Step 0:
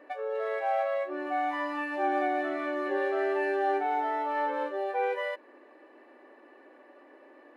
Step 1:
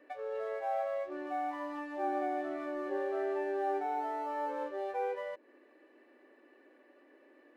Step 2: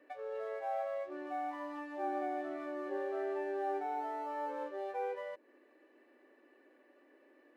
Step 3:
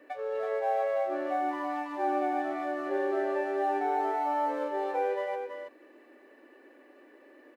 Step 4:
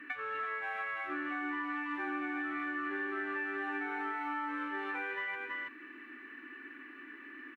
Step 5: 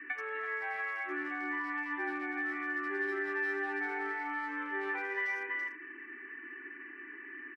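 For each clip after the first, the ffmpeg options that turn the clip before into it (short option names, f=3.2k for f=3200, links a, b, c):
-filter_complex "[0:a]acrossover=split=660|1200[a][b][c];[b]aeval=exprs='sgn(val(0))*max(abs(val(0))-0.00168,0)':c=same[d];[c]acompressor=threshold=-47dB:ratio=6[e];[a][d][e]amix=inputs=3:normalize=0,volume=-5dB"
-af "highpass=65,volume=-3dB"
-af "aecho=1:1:328:0.501,volume=8dB"
-af "firequalizer=gain_entry='entry(290,0);entry(560,-28);entry(880,-9);entry(1300,7);entry(2500,6);entry(4700,-11)':delay=0.05:min_phase=1,acompressor=threshold=-42dB:ratio=4,volume=6.5dB"
-filter_complex "[0:a]afftfilt=real='re*gte(hypot(re,im),0.001)':imag='im*gte(hypot(re,im),0.001)':win_size=1024:overlap=0.75,highpass=330,equalizer=f=380:t=q:w=4:g=7,equalizer=f=590:t=q:w=4:g=-5,equalizer=f=840:t=q:w=4:g=3,equalizer=f=1.3k:t=q:w=4:g=-5,equalizer=f=1.9k:t=q:w=4:g=6,equalizer=f=2.8k:t=q:w=4:g=-4,lowpass=f=3.4k:w=0.5412,lowpass=f=3.4k:w=1.3066,asplit=2[a][b];[b]adelay=80,highpass=300,lowpass=3.4k,asoftclip=type=hard:threshold=-32dB,volume=-10dB[c];[a][c]amix=inputs=2:normalize=0"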